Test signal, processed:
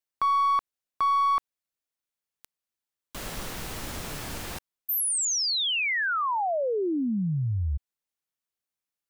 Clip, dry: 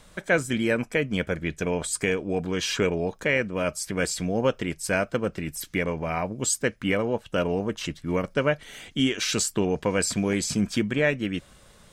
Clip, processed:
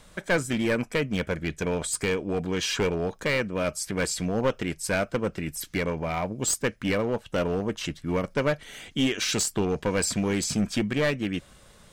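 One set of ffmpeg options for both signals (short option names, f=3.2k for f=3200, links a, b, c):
-af "aeval=exprs='clip(val(0),-1,0.0841)':c=same"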